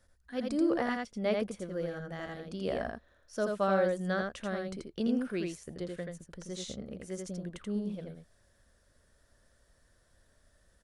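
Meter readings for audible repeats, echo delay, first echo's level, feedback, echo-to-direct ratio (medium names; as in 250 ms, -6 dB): 1, 83 ms, -3.5 dB, no regular repeats, -3.5 dB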